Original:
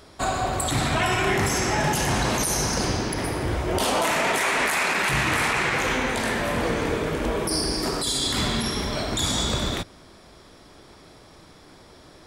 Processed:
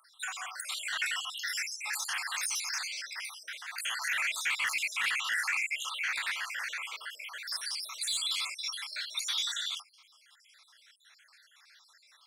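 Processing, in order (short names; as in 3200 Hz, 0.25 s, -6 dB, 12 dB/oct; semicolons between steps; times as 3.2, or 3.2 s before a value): random spectral dropouts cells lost 61%; HPF 1500 Hz 24 dB/oct; high shelf 3300 Hz -5.5 dB; soft clip -24 dBFS, distortion -20 dB; gain +1.5 dB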